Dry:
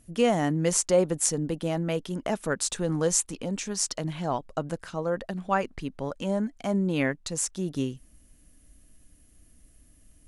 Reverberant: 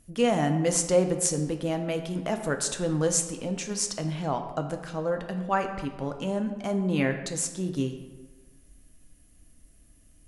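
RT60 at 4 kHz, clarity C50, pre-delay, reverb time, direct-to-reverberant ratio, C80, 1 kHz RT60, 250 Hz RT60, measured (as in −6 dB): 0.80 s, 8.5 dB, 5 ms, 1.3 s, 5.5 dB, 10.0 dB, 1.3 s, 1.3 s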